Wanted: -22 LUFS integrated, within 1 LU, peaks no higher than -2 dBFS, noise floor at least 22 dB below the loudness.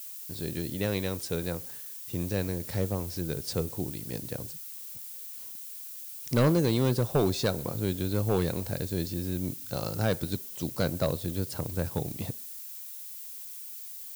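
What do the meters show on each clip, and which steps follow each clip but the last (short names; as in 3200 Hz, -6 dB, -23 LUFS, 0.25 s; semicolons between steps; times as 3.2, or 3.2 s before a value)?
clipped 0.4%; flat tops at -17.5 dBFS; noise floor -42 dBFS; noise floor target -54 dBFS; loudness -31.5 LUFS; peak -17.5 dBFS; loudness target -22.0 LUFS
-> clip repair -17.5 dBFS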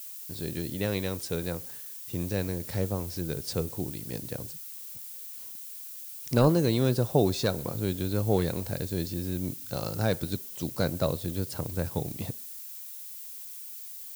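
clipped 0.0%; noise floor -42 dBFS; noise floor target -53 dBFS
-> denoiser 11 dB, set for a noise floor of -42 dBFS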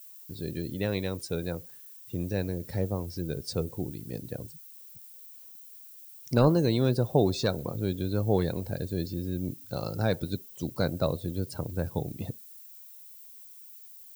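noise floor -49 dBFS; noise floor target -53 dBFS
-> denoiser 6 dB, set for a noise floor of -49 dBFS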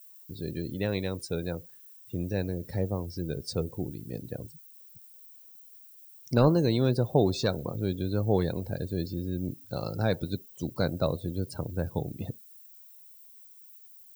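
noise floor -53 dBFS; loudness -30.5 LUFS; peak -9.5 dBFS; loudness target -22.0 LUFS
-> gain +8.5 dB; limiter -2 dBFS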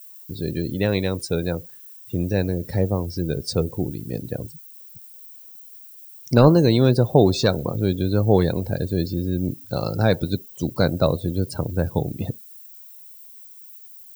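loudness -22.0 LUFS; peak -2.0 dBFS; noise floor -44 dBFS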